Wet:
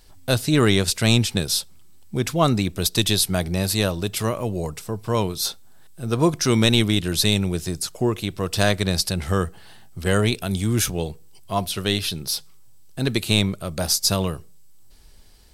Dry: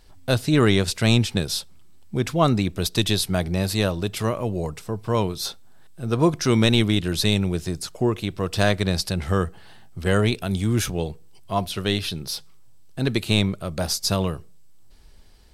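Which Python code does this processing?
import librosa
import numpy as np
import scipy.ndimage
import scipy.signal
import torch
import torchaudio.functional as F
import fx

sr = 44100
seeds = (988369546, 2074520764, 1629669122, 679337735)

y = fx.high_shelf(x, sr, hz=5300.0, db=8.5)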